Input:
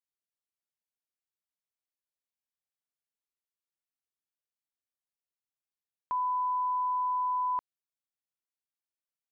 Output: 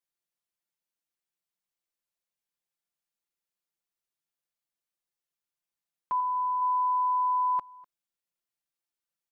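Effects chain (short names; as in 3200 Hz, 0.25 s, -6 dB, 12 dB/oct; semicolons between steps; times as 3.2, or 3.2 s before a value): comb 5.8 ms, depth 85%; echo 0.248 s -23 dB; 6.2–6.62 dynamic EQ 1200 Hz, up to -3 dB, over -39 dBFS, Q 1.4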